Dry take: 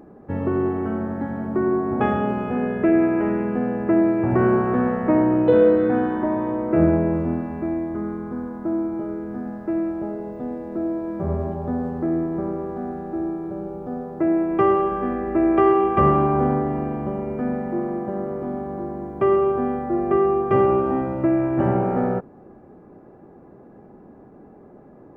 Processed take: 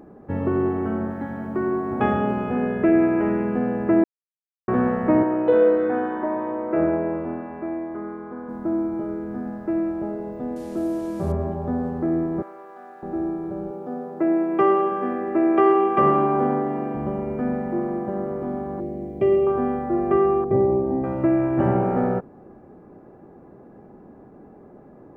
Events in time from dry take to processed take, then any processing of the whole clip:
1.10–2.02 s: tilt shelf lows -3.5 dB, about 1.5 kHz
4.04–4.68 s: mute
5.23–8.49 s: tone controls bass -14 dB, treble -14 dB
10.56–11.32 s: one-bit delta coder 64 kbps, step -43 dBFS
12.42–13.03 s: Bessel high-pass 1.2 kHz
13.71–16.95 s: high-pass 210 Hz
18.80–19.47 s: high-order bell 1.2 kHz -15.5 dB 1.2 oct
20.44–21.04 s: boxcar filter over 32 samples

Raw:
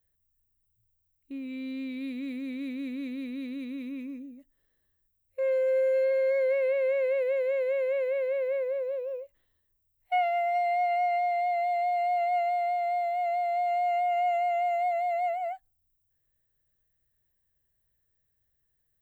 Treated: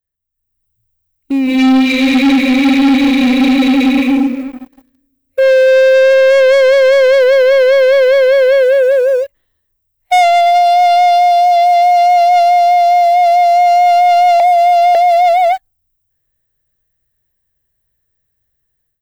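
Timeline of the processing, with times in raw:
1.43–4.08 s: reverb throw, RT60 1.4 s, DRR -5.5 dB
14.40–14.95 s: reverse
whole clip: dynamic bell 3.8 kHz, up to +5 dB, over -51 dBFS, Q 0.82; level rider gain up to 15 dB; waveshaping leveller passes 3; trim -1 dB

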